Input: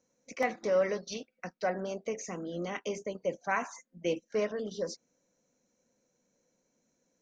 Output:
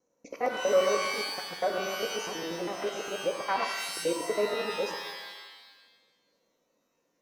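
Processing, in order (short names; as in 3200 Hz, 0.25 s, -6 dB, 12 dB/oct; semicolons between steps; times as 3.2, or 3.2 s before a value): local time reversal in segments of 81 ms; band shelf 620 Hz +8 dB 2.5 oct; shimmer reverb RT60 1.2 s, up +12 st, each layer -2 dB, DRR 5 dB; gain -6 dB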